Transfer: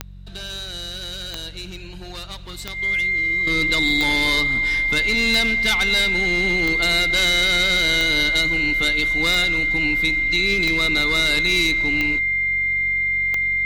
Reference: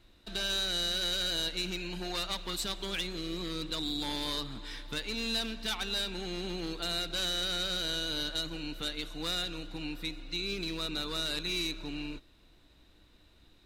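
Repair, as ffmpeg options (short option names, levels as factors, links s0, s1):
-af "adeclick=t=4,bandreject=f=46.6:t=h:w=4,bandreject=f=93.2:t=h:w=4,bandreject=f=139.8:t=h:w=4,bandreject=f=186.4:t=h:w=4,bandreject=f=2100:w=30,asetnsamples=n=441:p=0,asendcmd='3.47 volume volume -12dB',volume=1"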